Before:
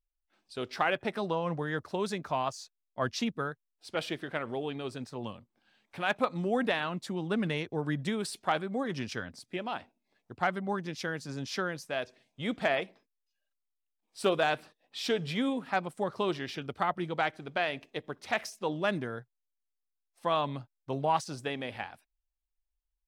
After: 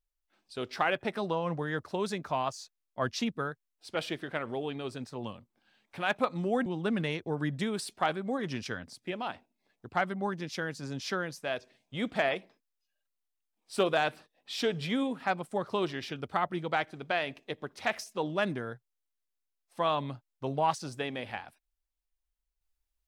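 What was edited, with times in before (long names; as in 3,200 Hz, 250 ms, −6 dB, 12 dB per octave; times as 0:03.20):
0:06.66–0:07.12: remove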